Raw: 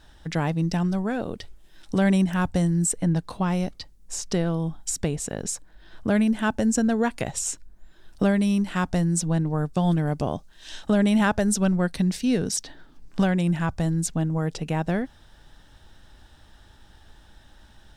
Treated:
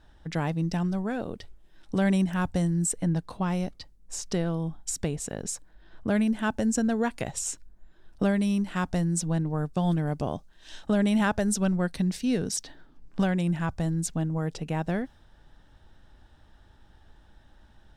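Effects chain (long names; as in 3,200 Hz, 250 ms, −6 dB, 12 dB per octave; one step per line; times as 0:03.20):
one half of a high-frequency compander decoder only
level −3.5 dB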